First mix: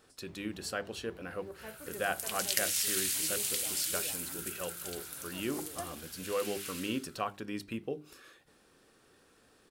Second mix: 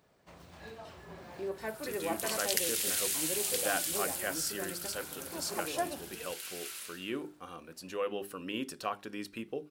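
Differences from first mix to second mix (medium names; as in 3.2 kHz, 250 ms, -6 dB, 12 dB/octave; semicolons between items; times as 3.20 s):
speech: entry +1.65 s; first sound +10.0 dB; master: add peaking EQ 78 Hz -10 dB 2.2 oct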